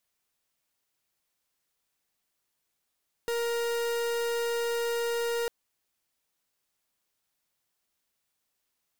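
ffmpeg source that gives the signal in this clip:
-f lavfi -i "aevalsrc='0.0335*(2*lt(mod(469*t,1),0.42)-1)':d=2.2:s=44100"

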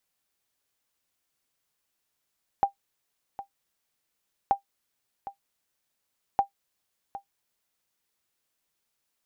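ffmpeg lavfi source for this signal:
-f lavfi -i "aevalsrc='0.237*(sin(2*PI*795*mod(t,1.88))*exp(-6.91*mod(t,1.88)/0.11)+0.178*sin(2*PI*795*max(mod(t,1.88)-0.76,0))*exp(-6.91*max(mod(t,1.88)-0.76,0)/0.11))':d=5.64:s=44100"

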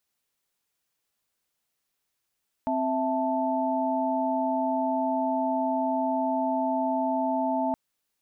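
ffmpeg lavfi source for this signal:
-f lavfi -i "aevalsrc='0.0398*(sin(2*PI*261.63*t)+sin(2*PI*659.26*t)+sin(2*PI*880*t))':d=5.07:s=44100"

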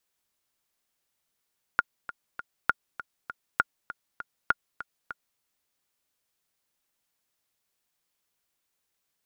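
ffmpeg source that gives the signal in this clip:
-f lavfi -i "aevalsrc='pow(10,(-7.5-15*gte(mod(t,3*60/199),60/199))/20)*sin(2*PI*1420*mod(t,60/199))*exp(-6.91*mod(t,60/199)/0.03)':d=3.61:s=44100"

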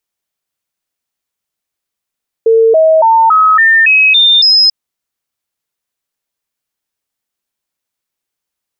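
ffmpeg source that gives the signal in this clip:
-f lavfi -i "aevalsrc='0.631*clip(min(mod(t,0.28),0.28-mod(t,0.28))/0.005,0,1)*sin(2*PI*451*pow(2,floor(t/0.28)/2)*mod(t,0.28))':d=2.24:s=44100"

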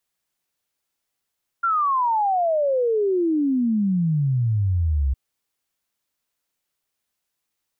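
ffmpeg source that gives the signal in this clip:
-f lavfi -i "aevalsrc='0.133*clip(min(t,3.51-t)/0.01,0,1)*sin(2*PI*1400*3.51/log(64/1400)*(exp(log(64/1400)*t/3.51)-1))':d=3.51:s=44100"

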